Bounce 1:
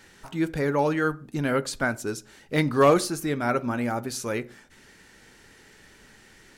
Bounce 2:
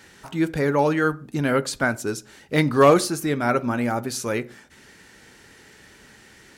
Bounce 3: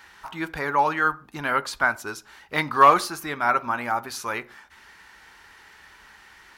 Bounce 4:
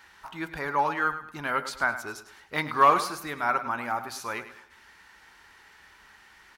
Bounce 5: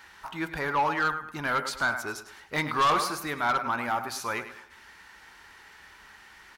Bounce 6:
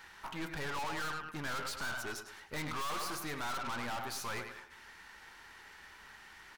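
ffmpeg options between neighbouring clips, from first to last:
-af "highpass=48,volume=1.5"
-af "equalizer=f=125:t=o:w=1:g=-12,equalizer=f=250:t=o:w=1:g=-9,equalizer=f=500:t=o:w=1:g=-9,equalizer=f=1000:t=o:w=1:g=9,equalizer=f=8000:t=o:w=1:g=-8"
-af "aecho=1:1:104|208|312|416:0.237|0.083|0.029|0.0102,volume=0.596"
-af "asoftclip=type=tanh:threshold=0.0794,volume=1.41"
-af "aeval=exprs='(tanh(70.8*val(0)+0.6)-tanh(0.6))/70.8':c=same"

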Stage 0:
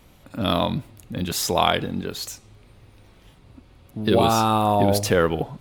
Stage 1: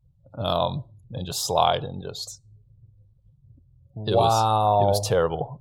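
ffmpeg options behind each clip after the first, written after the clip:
-af "equalizer=f=125:t=o:w=1:g=10,equalizer=f=250:t=o:w=1:g=-10,equalizer=f=500:t=o:w=1:g=5,equalizer=f=1000:t=o:w=1:g=4,equalizer=f=2000:t=o:w=1:g=-7,equalizer=f=4000:t=o:w=1:g=6,equalizer=f=8000:t=o:w=1:g=4,afftdn=nr=34:nf=-39,equalizer=f=740:t=o:w=0.97:g=5,volume=0.447"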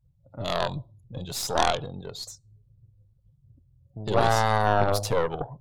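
-af "aeval=exprs='0.531*(cos(1*acos(clip(val(0)/0.531,-1,1)))-cos(1*PI/2))+0.188*(cos(2*acos(clip(val(0)/0.531,-1,1)))-cos(2*PI/2))+0.211*(cos(4*acos(clip(val(0)/0.531,-1,1)))-cos(4*PI/2))':c=same,volume=0.668"

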